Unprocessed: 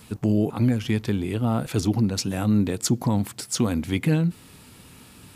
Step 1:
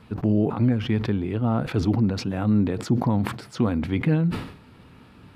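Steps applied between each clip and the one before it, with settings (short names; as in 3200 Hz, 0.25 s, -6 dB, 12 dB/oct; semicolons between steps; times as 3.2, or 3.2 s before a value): EQ curve 1400 Hz 0 dB, 4500 Hz -10 dB, 7300 Hz -22 dB; sustainer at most 91 dB/s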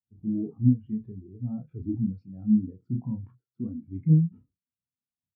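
doubler 32 ms -4 dB; spectral expander 2.5:1; gain -2 dB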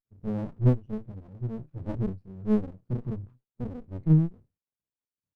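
Butterworth band-stop 770 Hz, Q 4; running maximum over 65 samples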